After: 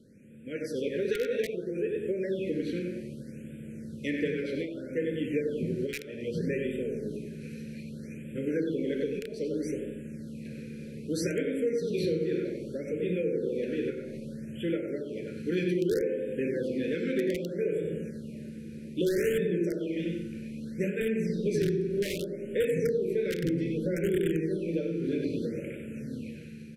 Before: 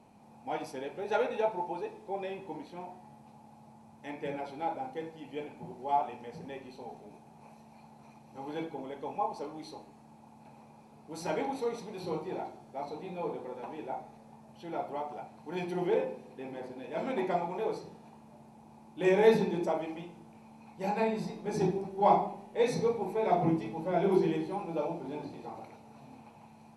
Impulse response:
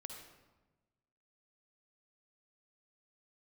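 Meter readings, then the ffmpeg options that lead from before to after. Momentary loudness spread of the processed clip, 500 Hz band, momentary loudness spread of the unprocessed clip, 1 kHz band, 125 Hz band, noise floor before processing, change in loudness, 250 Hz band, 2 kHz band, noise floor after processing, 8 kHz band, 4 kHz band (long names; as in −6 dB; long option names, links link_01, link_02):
13 LU, +3.0 dB, 18 LU, below −25 dB, +6.0 dB, −56 dBFS, +1.5 dB, +6.0 dB, +3.5 dB, −43 dBFS, +6.5 dB, +4.5 dB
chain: -filter_complex "[0:a]asplit=2[link_01][link_02];[link_02]adelay=94,lowpass=frequency=3400:poles=1,volume=-4dB,asplit=2[link_03][link_04];[link_04]adelay=94,lowpass=frequency=3400:poles=1,volume=0.38,asplit=2[link_05][link_06];[link_06]adelay=94,lowpass=frequency=3400:poles=1,volume=0.38,asplit=2[link_07][link_08];[link_08]adelay=94,lowpass=frequency=3400:poles=1,volume=0.38,asplit=2[link_09][link_10];[link_10]adelay=94,lowpass=frequency=3400:poles=1,volume=0.38[link_11];[link_01][link_03][link_05][link_07][link_09][link_11]amix=inputs=6:normalize=0,dynaudnorm=framelen=210:gausssize=9:maxgain=10.5dB,asplit=2[link_12][link_13];[link_13]aeval=exprs='(mod(3.16*val(0)+1,2)-1)/3.16':channel_layout=same,volume=-4.5dB[link_14];[link_12][link_14]amix=inputs=2:normalize=0,acompressor=threshold=-25dB:ratio=6,asuperstop=centerf=910:order=12:qfactor=0.93,equalizer=frequency=8000:width=0.53:gain=-4,aresample=32000,aresample=44100,afftfilt=real='re*(1-between(b*sr/1024,750*pow(5200/750,0.5+0.5*sin(2*PI*0.63*pts/sr))/1.41,750*pow(5200/750,0.5+0.5*sin(2*PI*0.63*pts/sr))*1.41))':imag='im*(1-between(b*sr/1024,750*pow(5200/750,0.5+0.5*sin(2*PI*0.63*pts/sr))/1.41,750*pow(5200/750,0.5+0.5*sin(2*PI*0.63*pts/sr))*1.41))':win_size=1024:overlap=0.75"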